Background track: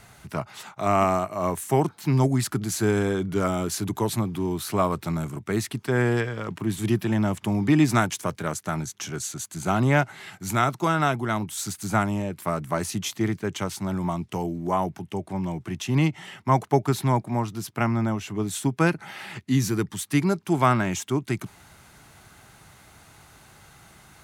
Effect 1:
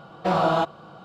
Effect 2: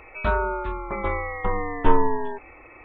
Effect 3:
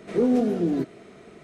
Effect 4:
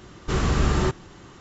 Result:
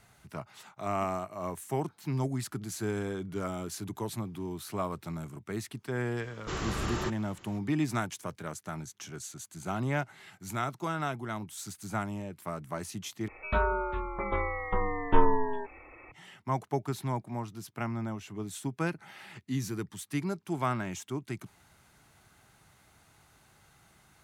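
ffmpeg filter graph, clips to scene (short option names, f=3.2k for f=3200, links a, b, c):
-filter_complex "[0:a]volume=-10.5dB[a];[4:a]lowshelf=f=330:g=-8.5[b];[a]asplit=2[c][d];[c]atrim=end=13.284[e];[2:a]atrim=end=2.84,asetpts=PTS-STARTPTS,volume=-4.5dB[f];[d]atrim=start=16.116[g];[b]atrim=end=1.4,asetpts=PTS-STARTPTS,volume=-7dB,afade=t=in:d=0.004:c=hsin,afade=t=out:st=1.396:d=0.004:c=hsin,adelay=6190[h];[e][f]acrossfade=d=0.004:c1=hsin:c2=hsin[i];[i][g]acrossfade=d=0.004:c1=hsin:c2=hsin[j];[j][h]amix=inputs=2:normalize=0"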